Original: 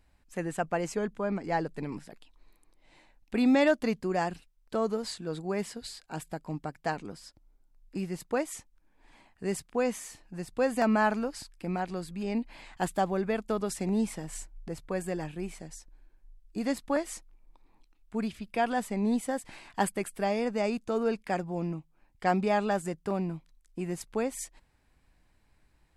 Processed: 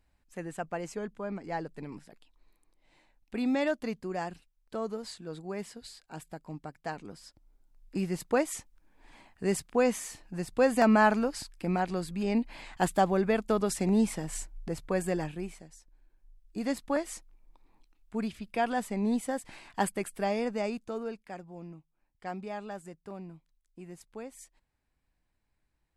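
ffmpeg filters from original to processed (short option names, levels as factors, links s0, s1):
-af "volume=3.55,afade=t=in:st=6.9:d=1.2:silence=0.375837,afade=t=out:st=15.16:d=0.53:silence=0.251189,afade=t=in:st=15.69:d=1.04:silence=0.398107,afade=t=out:st=20.4:d=0.83:silence=0.281838"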